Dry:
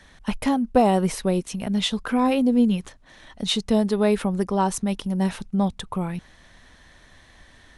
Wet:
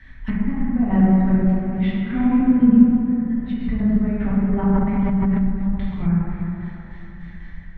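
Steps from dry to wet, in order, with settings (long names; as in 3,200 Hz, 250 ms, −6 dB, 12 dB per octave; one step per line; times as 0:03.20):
mains-hum notches 50/100/150/200 Hz
gate pattern "x.x...x..x.." 150 BPM −12 dB
graphic EQ with 10 bands 500 Hz −11 dB, 1,000 Hz −4 dB, 2,000 Hz +12 dB, 8,000 Hz −8 dB
dense smooth reverb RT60 3.4 s, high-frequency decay 0.4×, DRR −9 dB
0:04.45–0:05.47: transient designer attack −1 dB, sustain +11 dB
treble cut that deepens with the level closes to 1,600 Hz, closed at −20 dBFS
RIAA equalisation playback
level −6 dB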